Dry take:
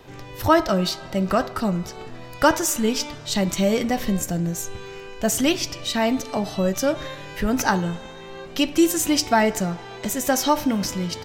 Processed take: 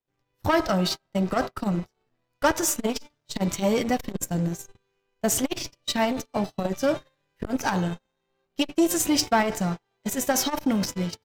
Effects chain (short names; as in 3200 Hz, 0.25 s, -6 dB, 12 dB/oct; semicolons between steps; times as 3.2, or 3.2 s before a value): sample leveller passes 2; in parallel at -8.5 dB: overloaded stage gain 22.5 dB; on the sum: gate -17 dBFS, range -38 dB; core saturation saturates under 380 Hz; gain -8 dB